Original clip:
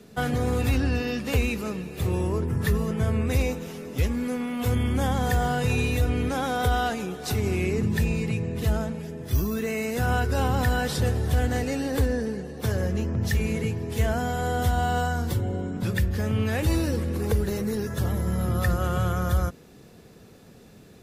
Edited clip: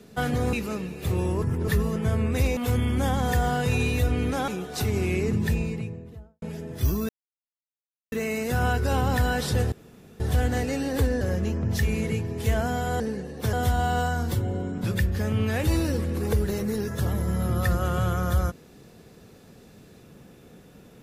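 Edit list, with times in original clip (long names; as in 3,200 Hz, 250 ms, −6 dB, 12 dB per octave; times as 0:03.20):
0:00.53–0:01.48: remove
0:02.37–0:02.63: reverse
0:03.52–0:04.55: remove
0:06.46–0:06.98: remove
0:07.82–0:08.92: fade out and dull
0:09.59: splice in silence 1.03 s
0:11.19: splice in room tone 0.48 s
0:12.20–0:12.73: move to 0:14.52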